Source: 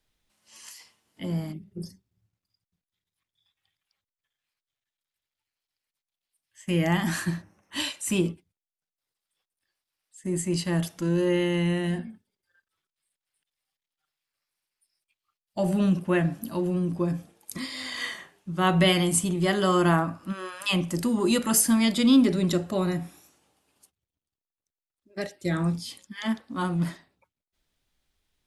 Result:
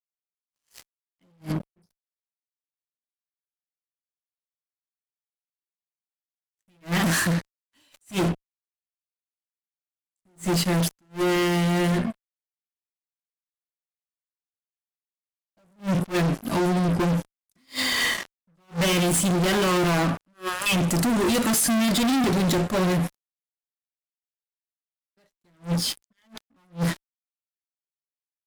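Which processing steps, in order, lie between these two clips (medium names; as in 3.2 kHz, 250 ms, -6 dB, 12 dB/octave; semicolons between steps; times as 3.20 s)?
fuzz box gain 37 dB, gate -44 dBFS; attacks held to a fixed rise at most 310 dB/s; trim -7 dB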